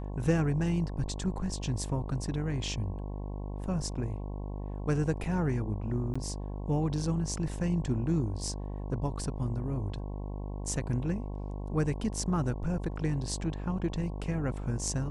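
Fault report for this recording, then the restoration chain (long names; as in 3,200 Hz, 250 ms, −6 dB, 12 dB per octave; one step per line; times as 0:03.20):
mains buzz 50 Hz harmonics 22 −37 dBFS
0:06.14–0:06.16: drop-out 15 ms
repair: hum removal 50 Hz, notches 22
repair the gap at 0:06.14, 15 ms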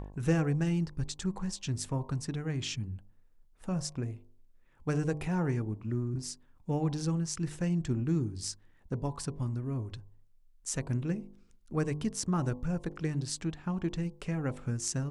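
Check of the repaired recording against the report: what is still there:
none of them is left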